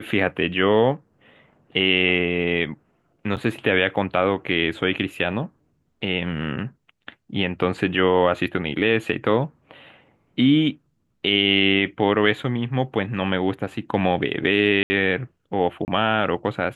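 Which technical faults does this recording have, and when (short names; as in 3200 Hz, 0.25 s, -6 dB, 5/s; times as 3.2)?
3.36–3.37 gap 8 ms
14.83–14.9 gap 70 ms
15.85–15.88 gap 29 ms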